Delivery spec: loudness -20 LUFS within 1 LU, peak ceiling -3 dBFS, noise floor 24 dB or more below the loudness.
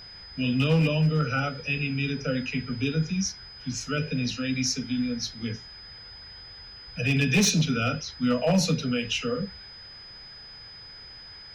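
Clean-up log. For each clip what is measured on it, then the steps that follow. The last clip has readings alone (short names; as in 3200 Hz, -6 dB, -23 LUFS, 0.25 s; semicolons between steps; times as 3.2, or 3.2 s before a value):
clipped 0.6%; flat tops at -16.5 dBFS; steady tone 5000 Hz; tone level -43 dBFS; loudness -26.5 LUFS; peak -16.5 dBFS; loudness target -20.0 LUFS
-> clip repair -16.5 dBFS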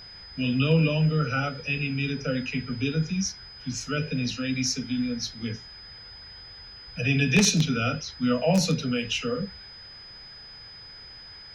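clipped 0.0%; steady tone 5000 Hz; tone level -43 dBFS
-> notch 5000 Hz, Q 30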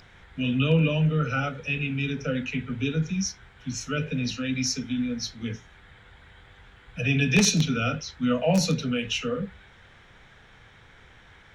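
steady tone none; loudness -26.0 LUFS; peak -7.5 dBFS; loudness target -20.0 LUFS
-> gain +6 dB; limiter -3 dBFS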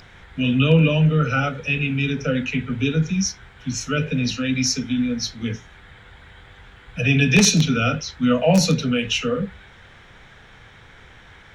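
loudness -20.0 LUFS; peak -3.0 dBFS; noise floor -47 dBFS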